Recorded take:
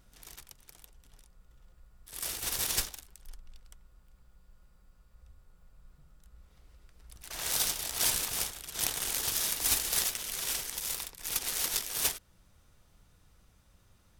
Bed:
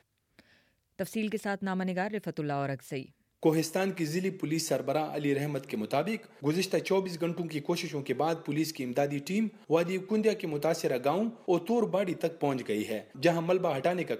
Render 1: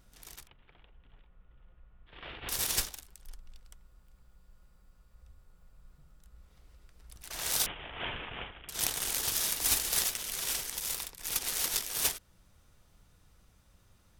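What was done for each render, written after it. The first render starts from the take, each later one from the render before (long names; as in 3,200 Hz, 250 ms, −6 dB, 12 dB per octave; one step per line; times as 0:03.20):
0:00.47–0:02.49: Butterworth low-pass 3,300 Hz 48 dB per octave
0:07.66–0:08.69: Butterworth low-pass 3,300 Hz 96 dB per octave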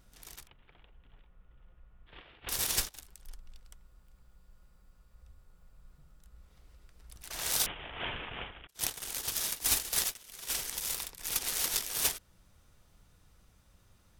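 0:02.22–0:02.95: noise gate −42 dBFS, range −13 dB
0:08.67–0:10.50: downward expander −29 dBFS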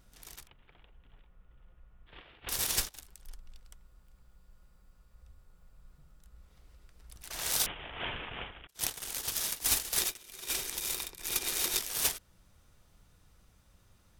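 0:09.98–0:11.79: hollow resonant body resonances 360/2,400/3,700 Hz, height 10 dB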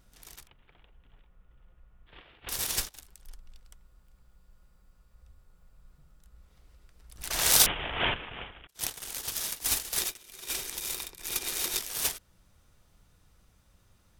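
0:07.18–0:08.14: clip gain +9.5 dB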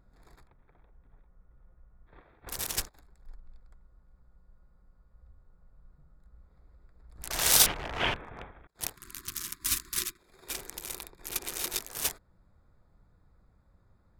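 adaptive Wiener filter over 15 samples
0:08.96–0:10.19: time-frequency box erased 390–970 Hz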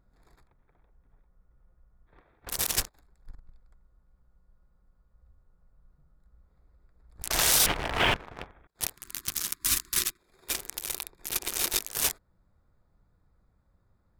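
leveller curve on the samples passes 2
brickwall limiter −12.5 dBFS, peak gain reduction 10.5 dB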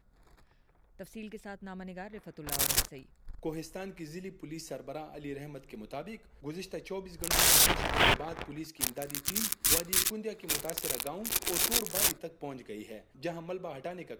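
mix in bed −11.5 dB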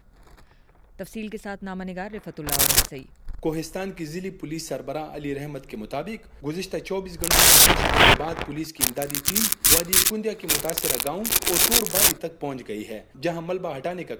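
level +10.5 dB
brickwall limiter −3 dBFS, peak gain reduction 2 dB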